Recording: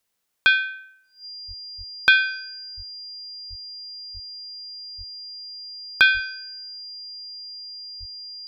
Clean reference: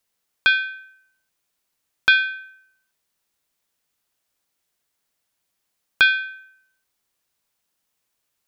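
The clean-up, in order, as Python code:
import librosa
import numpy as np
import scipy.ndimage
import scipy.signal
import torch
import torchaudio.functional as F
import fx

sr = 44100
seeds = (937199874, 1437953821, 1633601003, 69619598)

y = fx.notch(x, sr, hz=4800.0, q=30.0)
y = fx.fix_deplosive(y, sr, at_s=(1.47, 1.77, 2.76, 3.49, 4.13, 4.97, 6.13, 7.99))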